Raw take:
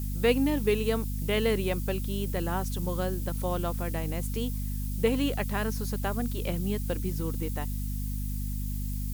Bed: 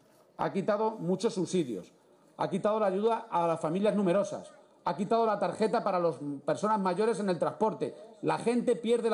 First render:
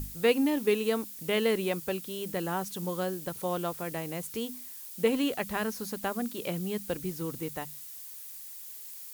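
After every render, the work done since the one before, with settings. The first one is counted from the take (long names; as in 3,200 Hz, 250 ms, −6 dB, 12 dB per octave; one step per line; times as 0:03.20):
mains-hum notches 50/100/150/200/250 Hz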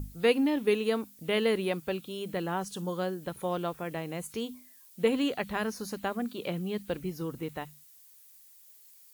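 noise reduction from a noise print 12 dB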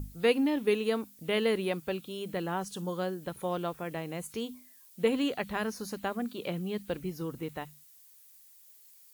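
level −1 dB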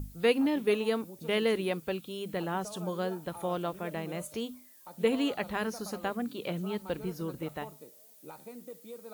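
mix in bed −18.5 dB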